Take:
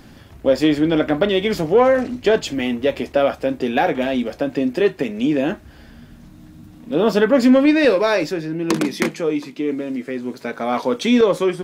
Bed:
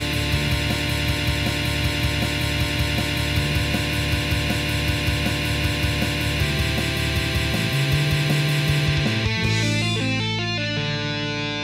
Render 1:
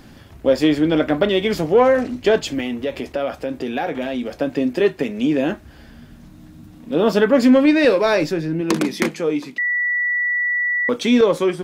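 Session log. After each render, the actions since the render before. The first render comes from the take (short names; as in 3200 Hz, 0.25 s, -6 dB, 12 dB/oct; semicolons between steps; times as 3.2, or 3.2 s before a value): 2.6–4.36 compressor 2:1, threshold -23 dBFS; 8.05–8.61 low shelf 160 Hz +9.5 dB; 9.58–10.89 bleep 1950 Hz -17 dBFS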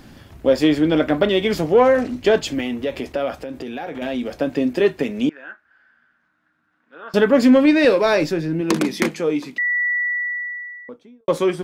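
3.35–4.02 compressor 2.5:1, threshold -28 dBFS; 5.29–7.14 band-pass 1500 Hz, Q 6.3; 9.84–11.28 studio fade out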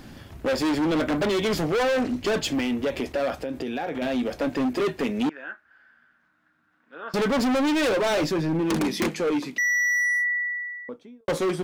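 overloaded stage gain 21 dB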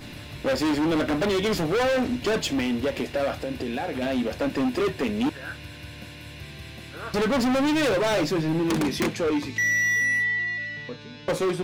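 add bed -18.5 dB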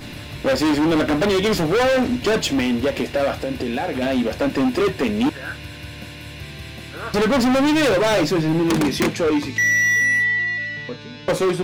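gain +5.5 dB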